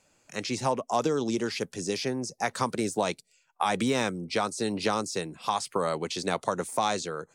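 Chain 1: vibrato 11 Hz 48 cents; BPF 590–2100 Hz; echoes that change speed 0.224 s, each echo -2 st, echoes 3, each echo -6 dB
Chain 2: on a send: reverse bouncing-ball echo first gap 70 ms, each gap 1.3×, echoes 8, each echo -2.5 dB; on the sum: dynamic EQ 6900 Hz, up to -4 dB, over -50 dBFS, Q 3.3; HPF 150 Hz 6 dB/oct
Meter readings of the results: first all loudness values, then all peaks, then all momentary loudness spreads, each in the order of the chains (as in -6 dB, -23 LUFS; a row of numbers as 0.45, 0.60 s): -33.0, -27.0 LUFS; -14.0, -10.5 dBFS; 7, 5 LU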